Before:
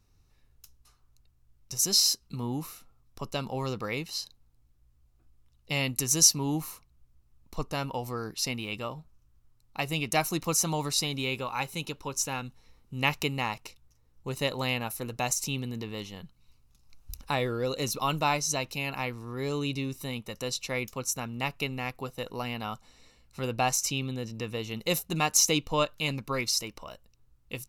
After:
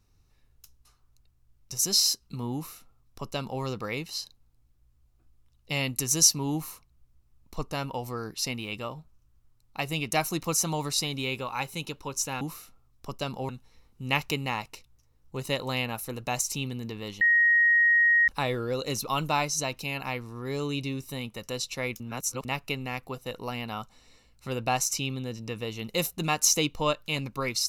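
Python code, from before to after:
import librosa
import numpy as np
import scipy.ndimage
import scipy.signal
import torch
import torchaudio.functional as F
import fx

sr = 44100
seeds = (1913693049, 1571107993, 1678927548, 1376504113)

y = fx.edit(x, sr, fx.duplicate(start_s=2.54, length_s=1.08, to_s=12.41),
    fx.bleep(start_s=16.13, length_s=1.07, hz=1880.0, db=-17.5),
    fx.reverse_span(start_s=20.92, length_s=0.45), tone=tone)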